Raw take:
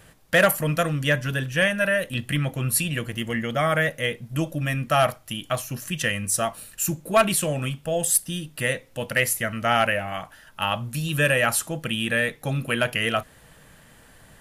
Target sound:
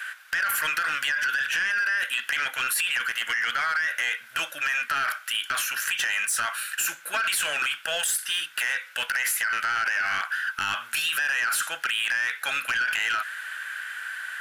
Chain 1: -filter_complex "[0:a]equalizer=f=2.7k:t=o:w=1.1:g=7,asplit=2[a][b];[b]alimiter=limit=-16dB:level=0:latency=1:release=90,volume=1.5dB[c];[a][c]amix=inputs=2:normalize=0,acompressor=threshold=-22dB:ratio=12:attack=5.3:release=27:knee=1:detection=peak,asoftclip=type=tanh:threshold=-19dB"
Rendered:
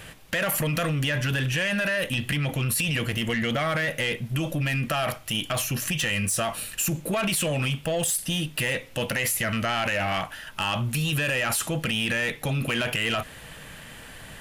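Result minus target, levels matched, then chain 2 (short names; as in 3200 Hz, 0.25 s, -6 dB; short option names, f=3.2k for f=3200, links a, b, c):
2000 Hz band -4.5 dB
-filter_complex "[0:a]highpass=f=1.5k:t=q:w=11,equalizer=f=2.7k:t=o:w=1.1:g=7,asplit=2[a][b];[b]alimiter=limit=-16dB:level=0:latency=1:release=90,volume=1.5dB[c];[a][c]amix=inputs=2:normalize=0,acompressor=threshold=-22dB:ratio=12:attack=5.3:release=27:knee=1:detection=peak,asoftclip=type=tanh:threshold=-19dB"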